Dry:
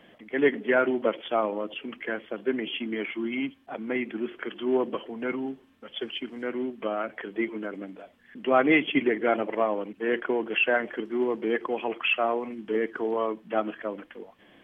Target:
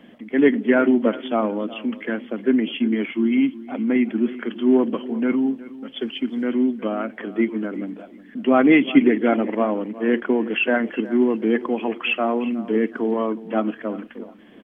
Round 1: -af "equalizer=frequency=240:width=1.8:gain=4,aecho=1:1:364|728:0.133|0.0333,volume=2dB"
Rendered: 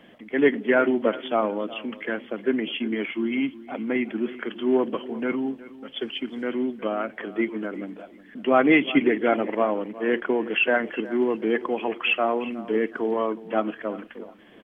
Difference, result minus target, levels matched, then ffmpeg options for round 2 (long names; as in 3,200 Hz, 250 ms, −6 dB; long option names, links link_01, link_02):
250 Hz band −3.0 dB
-af "equalizer=frequency=240:width=1.8:gain=12.5,aecho=1:1:364|728:0.133|0.0333,volume=2dB"